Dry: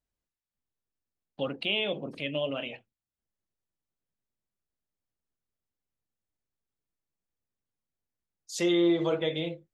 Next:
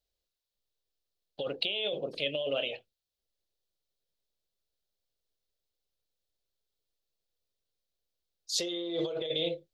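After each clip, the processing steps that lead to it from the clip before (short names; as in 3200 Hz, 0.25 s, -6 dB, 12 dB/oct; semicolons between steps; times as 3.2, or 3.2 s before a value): graphic EQ 125/250/500/1000/2000/4000/8000 Hz -5/-11/+7/-8/-7/+10/-4 dB; negative-ratio compressor -32 dBFS, ratio -1; bell 77 Hz -2.5 dB 2.3 oct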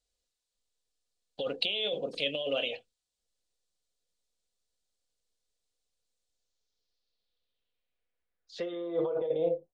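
low-pass sweep 8200 Hz -> 830 Hz, 6.27–9.45; comb 4.1 ms, depth 34%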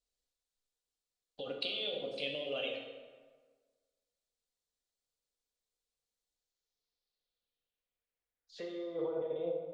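plate-style reverb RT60 1.5 s, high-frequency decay 0.65×, DRR 1 dB; gain -8 dB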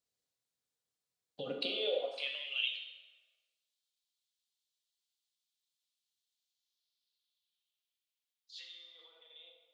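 high-pass sweep 120 Hz -> 3300 Hz, 1.39–2.68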